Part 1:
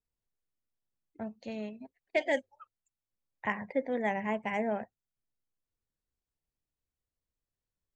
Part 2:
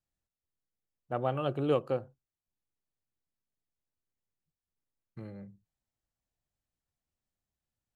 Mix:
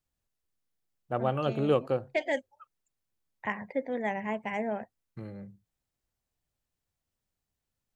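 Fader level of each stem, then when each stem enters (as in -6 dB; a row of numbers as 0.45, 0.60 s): -0.5, +2.5 dB; 0.00, 0.00 s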